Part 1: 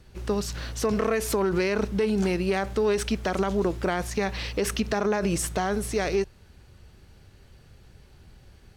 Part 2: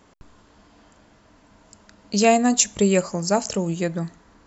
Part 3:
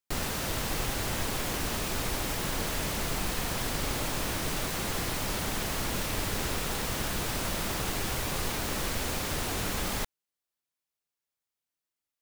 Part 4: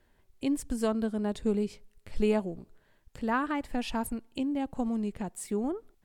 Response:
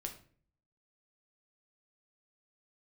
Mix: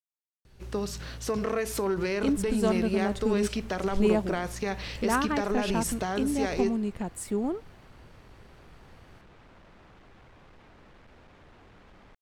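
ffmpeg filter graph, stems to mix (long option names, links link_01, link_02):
-filter_complex "[0:a]adelay=450,volume=-7dB,asplit=2[link_01][link_02];[link_02]volume=-5.5dB[link_03];[2:a]lowpass=2200,volume=31.5dB,asoftclip=hard,volume=-31.5dB,adelay=2100,volume=-19dB[link_04];[3:a]adelay=1800,volume=2dB[link_05];[4:a]atrim=start_sample=2205[link_06];[link_03][link_06]afir=irnorm=-1:irlink=0[link_07];[link_01][link_04][link_05][link_07]amix=inputs=4:normalize=0"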